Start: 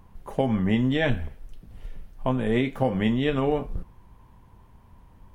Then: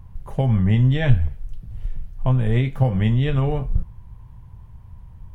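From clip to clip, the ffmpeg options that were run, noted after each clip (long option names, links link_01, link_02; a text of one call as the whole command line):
ffmpeg -i in.wav -af "lowshelf=frequency=180:width_type=q:width=1.5:gain=11.5,volume=-1dB" out.wav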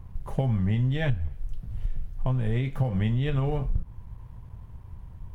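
ffmpeg -i in.wav -af "acompressor=threshold=-22dB:ratio=5,aeval=exprs='sgn(val(0))*max(abs(val(0))-0.00158,0)':channel_layout=same" out.wav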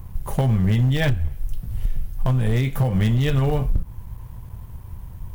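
ffmpeg -i in.wav -af "asoftclip=type=hard:threshold=-20dB,aemphasis=mode=production:type=50fm,volume=7dB" out.wav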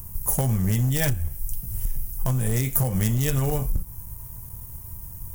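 ffmpeg -i in.wav -af "aexciter=amount=8.8:drive=4.7:freq=5500,volume=-4dB" out.wav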